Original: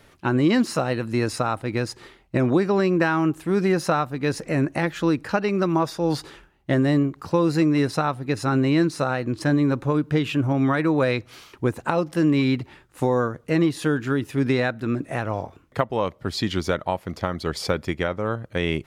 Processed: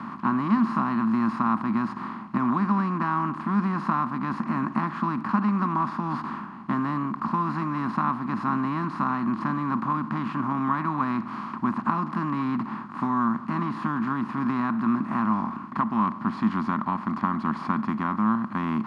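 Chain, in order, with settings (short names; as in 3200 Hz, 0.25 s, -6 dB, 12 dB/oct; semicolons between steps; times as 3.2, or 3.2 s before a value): per-bin compression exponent 0.4; double band-pass 480 Hz, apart 2.3 oct; gain +2.5 dB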